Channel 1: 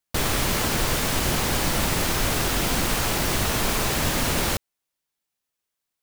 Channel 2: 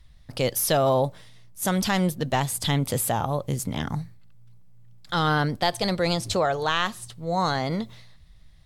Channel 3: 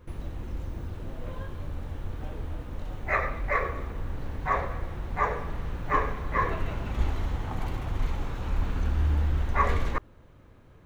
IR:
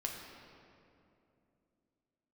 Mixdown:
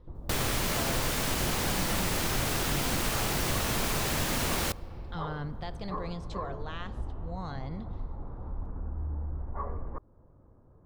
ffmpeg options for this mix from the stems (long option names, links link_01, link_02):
-filter_complex "[0:a]adelay=150,volume=1.5dB,asplit=2[link_01][link_02];[link_02]volume=-20.5dB[link_03];[1:a]lowpass=7300,bass=frequency=250:gain=8,treble=frequency=4000:gain=-7,volume=-14dB,asplit=2[link_04][link_05];[link_05]volume=-13dB[link_06];[2:a]lowpass=frequency=1100:width=0.5412,lowpass=frequency=1100:width=1.3066,volume=-4dB[link_07];[3:a]atrim=start_sample=2205[link_08];[link_03][link_06]amix=inputs=2:normalize=0[link_09];[link_09][link_08]afir=irnorm=-1:irlink=0[link_10];[link_01][link_04][link_07][link_10]amix=inputs=4:normalize=0,acompressor=threshold=-41dB:ratio=1.5"